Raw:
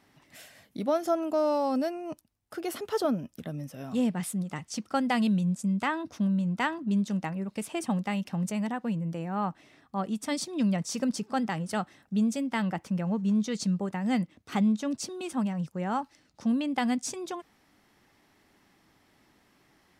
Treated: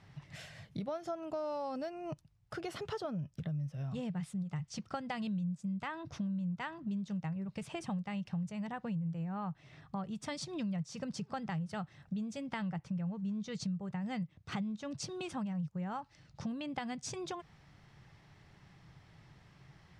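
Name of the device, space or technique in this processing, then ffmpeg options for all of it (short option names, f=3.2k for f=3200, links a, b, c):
jukebox: -af "lowpass=5.8k,lowshelf=f=190:t=q:w=3:g=9,acompressor=threshold=-39dB:ratio=4,volume=1dB"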